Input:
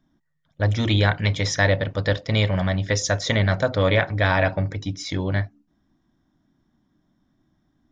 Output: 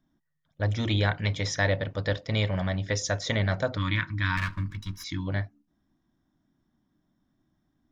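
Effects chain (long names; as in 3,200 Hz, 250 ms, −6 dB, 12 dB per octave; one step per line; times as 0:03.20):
0:04.37–0:05.04: lower of the sound and its delayed copy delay 1.8 ms
0:03.77–0:05.28: gain on a spectral selection 350–920 Hz −26 dB
level −6 dB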